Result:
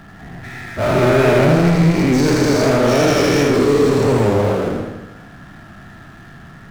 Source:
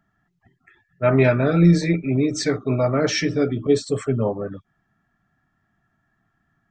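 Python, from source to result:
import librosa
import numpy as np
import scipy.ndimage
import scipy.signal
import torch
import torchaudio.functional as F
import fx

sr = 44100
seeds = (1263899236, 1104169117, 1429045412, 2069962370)

y = fx.spec_dilate(x, sr, span_ms=480)
y = fx.high_shelf(y, sr, hz=2600.0, db=-10.5)
y = fx.power_curve(y, sr, exponent=0.5)
y = fx.echo_warbled(y, sr, ms=80, feedback_pct=59, rate_hz=2.8, cents=101, wet_db=-5.0)
y = F.gain(torch.from_numpy(y), -7.5).numpy()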